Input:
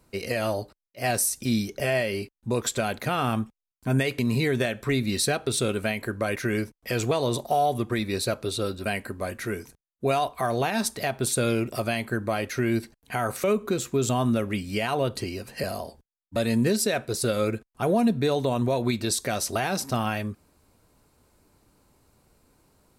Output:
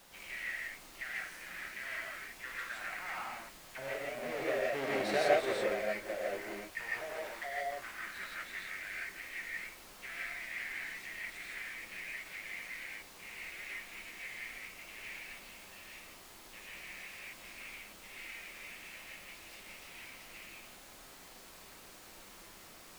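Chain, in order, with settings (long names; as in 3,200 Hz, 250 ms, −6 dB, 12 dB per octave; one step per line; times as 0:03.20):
each half-wave held at its own peak
source passing by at 0:05.12, 10 m/s, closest 3.4 metres
octave-band graphic EQ 250/500/1,000/2,000 Hz −6/−6/−11/+11 dB
envelope filter 570–3,100 Hz, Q 3.4, down, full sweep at −32.5 dBFS
background noise pink −63 dBFS
low-shelf EQ 270 Hz −12 dB
reverb whose tail is shaped and stops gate 190 ms rising, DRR −5 dB
level +5.5 dB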